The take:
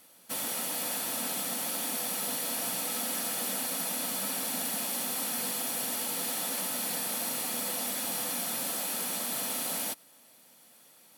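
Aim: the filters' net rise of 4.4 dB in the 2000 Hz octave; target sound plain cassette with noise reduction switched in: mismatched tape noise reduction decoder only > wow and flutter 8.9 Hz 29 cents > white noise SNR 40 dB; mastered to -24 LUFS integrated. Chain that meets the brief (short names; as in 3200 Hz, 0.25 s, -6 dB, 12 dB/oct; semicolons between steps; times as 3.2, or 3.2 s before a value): bell 2000 Hz +5.5 dB; mismatched tape noise reduction decoder only; wow and flutter 8.9 Hz 29 cents; white noise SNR 40 dB; gain +6 dB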